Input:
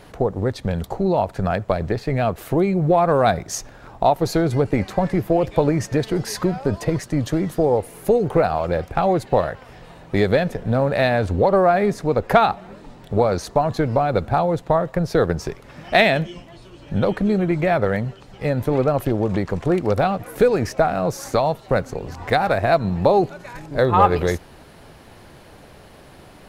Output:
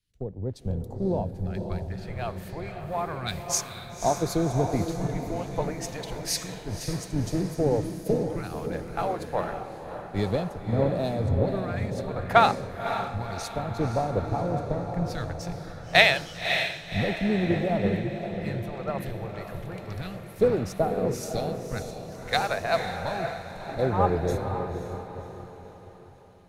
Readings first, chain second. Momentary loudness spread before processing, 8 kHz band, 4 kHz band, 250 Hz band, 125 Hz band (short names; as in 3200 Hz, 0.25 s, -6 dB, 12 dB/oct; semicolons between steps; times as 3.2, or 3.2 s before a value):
8 LU, +0.5 dB, 0.0 dB, -8.0 dB, -6.5 dB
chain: phaser stages 2, 0.3 Hz, lowest notch 210–2000 Hz; diffused feedback echo 0.544 s, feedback 66%, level -3.5 dB; three-band expander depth 100%; gain -7.5 dB